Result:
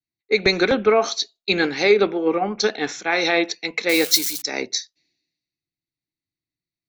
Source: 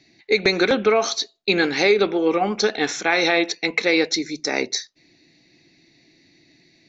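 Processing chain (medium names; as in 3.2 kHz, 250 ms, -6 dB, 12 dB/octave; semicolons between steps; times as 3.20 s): 3.89–4.42 s: zero-crossing glitches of -17 dBFS; three bands expanded up and down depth 100%; trim -1 dB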